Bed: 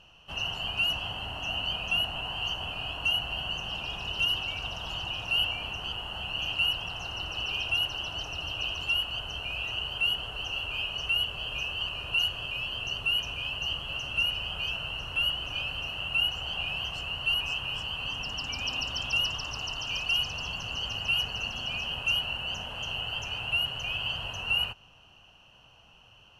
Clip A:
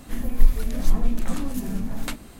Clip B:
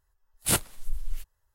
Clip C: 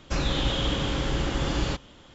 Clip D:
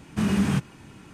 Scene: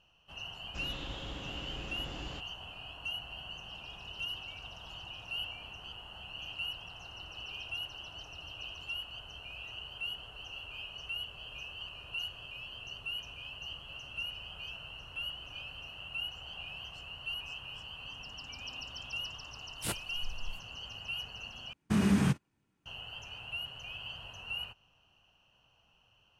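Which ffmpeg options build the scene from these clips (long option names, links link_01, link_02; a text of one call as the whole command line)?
ffmpeg -i bed.wav -i cue0.wav -i cue1.wav -i cue2.wav -i cue3.wav -filter_complex "[0:a]volume=-11.5dB[link_01];[2:a]highshelf=frequency=11000:gain=-9[link_02];[4:a]agate=range=-27dB:threshold=-37dB:ratio=16:release=100:detection=peak[link_03];[link_01]asplit=2[link_04][link_05];[link_04]atrim=end=21.734[link_06];[link_03]atrim=end=1.13,asetpts=PTS-STARTPTS,volume=-4dB[link_07];[link_05]atrim=start=22.856[link_08];[3:a]atrim=end=2.14,asetpts=PTS-STARTPTS,volume=-17dB,afade=type=in:duration=0.004:curve=hsin,afade=type=out:start_time=2.136:duration=0.004:curve=hsin,adelay=640[link_09];[link_02]atrim=end=1.54,asetpts=PTS-STARTPTS,volume=-10.5dB,afade=type=in:duration=0.004:curve=hsin,afade=type=out:start_time=1.536:duration=0.004:curve=hsin,adelay=19360[link_10];[link_06][link_07]acrossfade=duration=0.004:curve1=hsin:curve2=hsin[link_11];[link_11][link_08]acrossfade=duration=0.004:curve1=hsin:curve2=hsin[link_12];[link_12][link_09][link_10]amix=inputs=3:normalize=0" out.wav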